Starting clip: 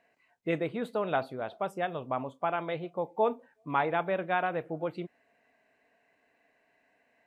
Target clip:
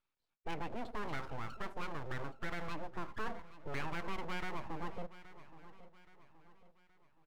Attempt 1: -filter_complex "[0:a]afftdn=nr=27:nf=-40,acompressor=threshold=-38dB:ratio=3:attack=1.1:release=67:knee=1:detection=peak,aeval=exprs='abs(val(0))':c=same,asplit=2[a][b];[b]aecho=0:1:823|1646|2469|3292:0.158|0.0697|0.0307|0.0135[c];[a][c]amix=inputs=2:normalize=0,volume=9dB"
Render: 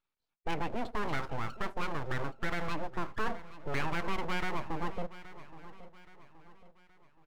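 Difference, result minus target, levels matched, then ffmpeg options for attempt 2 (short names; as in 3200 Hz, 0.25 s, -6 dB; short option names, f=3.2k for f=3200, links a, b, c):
compressor: peak gain reduction -6.5 dB
-filter_complex "[0:a]afftdn=nr=27:nf=-40,acompressor=threshold=-48dB:ratio=3:attack=1.1:release=67:knee=1:detection=peak,aeval=exprs='abs(val(0))':c=same,asplit=2[a][b];[b]aecho=0:1:823|1646|2469|3292:0.158|0.0697|0.0307|0.0135[c];[a][c]amix=inputs=2:normalize=0,volume=9dB"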